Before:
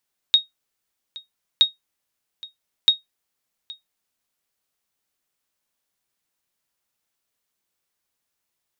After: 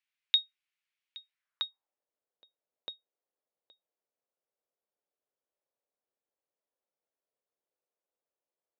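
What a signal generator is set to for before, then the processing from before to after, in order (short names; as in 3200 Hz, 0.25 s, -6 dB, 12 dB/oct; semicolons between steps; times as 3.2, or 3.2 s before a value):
sonar ping 3750 Hz, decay 0.15 s, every 1.27 s, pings 3, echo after 0.82 s, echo -22 dB -5.5 dBFS
band-pass sweep 2400 Hz -> 520 Hz, 1.3–1.99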